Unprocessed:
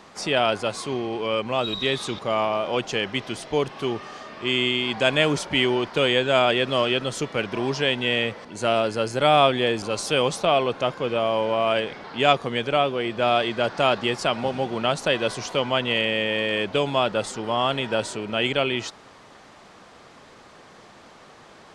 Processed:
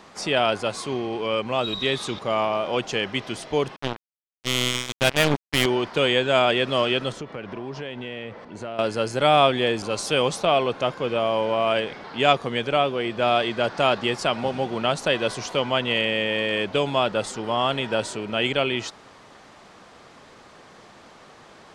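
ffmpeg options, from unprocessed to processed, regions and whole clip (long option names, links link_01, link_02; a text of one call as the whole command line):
ffmpeg -i in.wav -filter_complex "[0:a]asettb=1/sr,asplit=3[link_01][link_02][link_03];[link_01]atrim=end=3.764[link_04];[link_02]atrim=start=3.76:end=5.66,asetpts=PTS-STARTPTS,afade=type=in:duration=0.004:curve=qsin,afade=type=out:start_time=1.896:duration=0.004:curve=qsin,bass=frequency=250:gain=5,treble=frequency=4000:gain=-6,acrusher=bits=2:mix=0:aa=0.5[link_05];[link_03]atrim=start=5.656[link_06];[link_04][link_05]acrossfade=duration=0.004:curve1=hsin:curve2=qsin[link_07];[link_07][link_06]acrossfade=duration=0.004:curve1=qsin:curve2=hsin,asettb=1/sr,asplit=3[link_08][link_09][link_10];[link_08]atrim=end=7.124[link_11];[link_09]atrim=start=7.12:end=8.79,asetpts=PTS-STARTPTS,afade=type=in:duration=0.004:curve=qsin,afade=type=out:start_time=1.666:duration=0.004:curve=qsin,lowpass=frequency=1700:poles=1,acompressor=threshold=-30dB:ratio=4:attack=3.2:release=140:knee=1:detection=peak[link_12];[link_10]atrim=start=8.786[link_13];[link_11][link_12]acrossfade=duration=0.004:curve1=hsin:curve2=qsin[link_14];[link_14][link_13]acrossfade=duration=0.004:curve1=qsin:curve2=hsin" out.wav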